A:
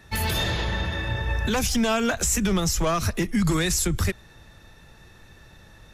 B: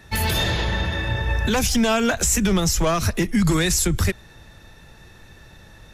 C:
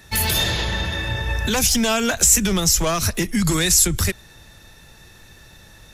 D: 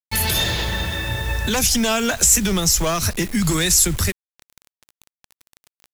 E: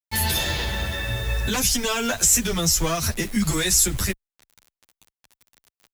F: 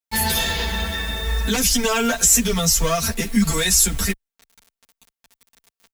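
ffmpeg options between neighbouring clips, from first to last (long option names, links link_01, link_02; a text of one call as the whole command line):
ffmpeg -i in.wav -af "equalizer=frequency=1200:width_type=o:width=0.22:gain=-2.5,volume=3.5dB" out.wav
ffmpeg -i in.wav -af "highshelf=frequency=3600:gain=10,volume=-1.5dB" out.wav
ffmpeg -i in.wav -af "acrusher=bits=5:mix=0:aa=0.000001" out.wav
ffmpeg -i in.wav -filter_complex "[0:a]asplit=2[link_01][link_02];[link_02]adelay=9.7,afreqshift=-0.37[link_03];[link_01][link_03]amix=inputs=2:normalize=1" out.wav
ffmpeg -i in.wav -af "aecho=1:1:4.4:0.92" out.wav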